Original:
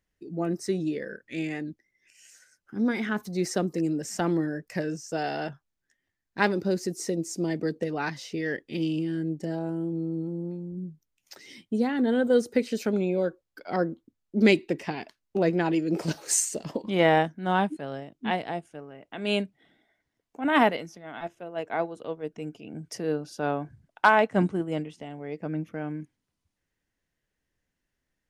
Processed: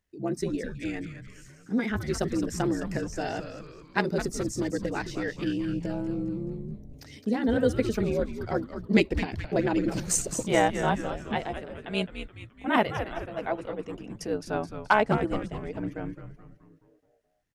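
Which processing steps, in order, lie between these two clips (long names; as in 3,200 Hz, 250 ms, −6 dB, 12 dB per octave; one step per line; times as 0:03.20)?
time stretch by overlap-add 0.62×, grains 29 ms
echo with shifted repeats 213 ms, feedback 49%, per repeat −150 Hz, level −9 dB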